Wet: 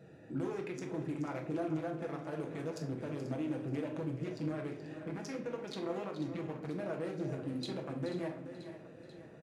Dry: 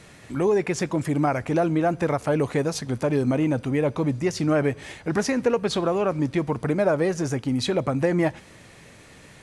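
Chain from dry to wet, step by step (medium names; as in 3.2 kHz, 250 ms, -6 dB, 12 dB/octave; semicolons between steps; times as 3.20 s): local Wiener filter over 41 samples; high-pass 120 Hz; bass shelf 360 Hz -9.5 dB; compression, threshold -36 dBFS, peak gain reduction 15.5 dB; peak limiter -32 dBFS, peak gain reduction 9 dB; thinning echo 487 ms, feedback 63%, high-pass 210 Hz, level -13.5 dB; flange 1.1 Hz, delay 1.4 ms, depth 4.2 ms, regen -71%; delay 428 ms -11.5 dB; on a send at -2 dB: reverberation RT60 0.65 s, pre-delay 6 ms; on the sum: trim +4.5 dB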